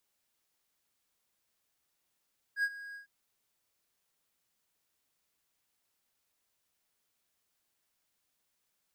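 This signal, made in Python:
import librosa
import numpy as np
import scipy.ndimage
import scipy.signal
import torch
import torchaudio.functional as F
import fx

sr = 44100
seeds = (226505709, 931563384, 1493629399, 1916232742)

y = fx.adsr_tone(sr, wave='triangle', hz=1640.0, attack_ms=75.0, decay_ms=52.0, sustain_db=-17.0, held_s=0.39, release_ms=116.0, level_db=-23.5)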